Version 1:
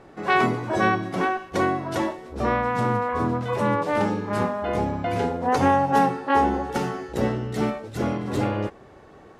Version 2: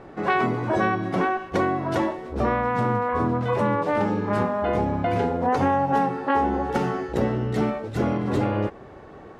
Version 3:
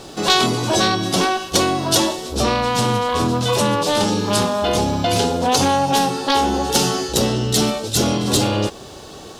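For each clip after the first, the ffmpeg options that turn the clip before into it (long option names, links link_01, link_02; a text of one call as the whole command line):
ffmpeg -i in.wav -af "highshelf=frequency=4200:gain=-11,acompressor=threshold=-25dB:ratio=3,volume=5dB" out.wav
ffmpeg -i in.wav -af "aeval=exprs='0.355*sin(PI/2*1.58*val(0)/0.355)':channel_layout=same,aexciter=amount=7.1:drive=9.4:freq=3100,volume=-2.5dB" out.wav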